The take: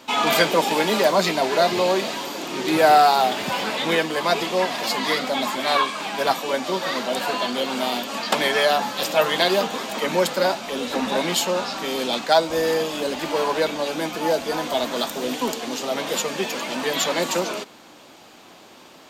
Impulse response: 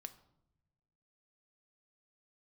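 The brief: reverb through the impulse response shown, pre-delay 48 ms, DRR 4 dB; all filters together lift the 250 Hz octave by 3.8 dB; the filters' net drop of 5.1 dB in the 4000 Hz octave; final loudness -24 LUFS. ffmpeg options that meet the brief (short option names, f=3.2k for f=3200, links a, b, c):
-filter_complex "[0:a]equalizer=f=250:t=o:g=5,equalizer=f=4k:t=o:g=-6.5,asplit=2[a][b];[1:a]atrim=start_sample=2205,adelay=48[c];[b][c]afir=irnorm=-1:irlink=0,volume=1dB[d];[a][d]amix=inputs=2:normalize=0,volume=-3.5dB"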